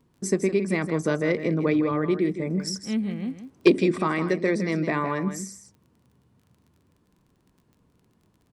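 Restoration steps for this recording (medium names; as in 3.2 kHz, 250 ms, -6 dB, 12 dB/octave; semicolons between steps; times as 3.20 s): clip repair -7 dBFS; de-click; inverse comb 160 ms -10 dB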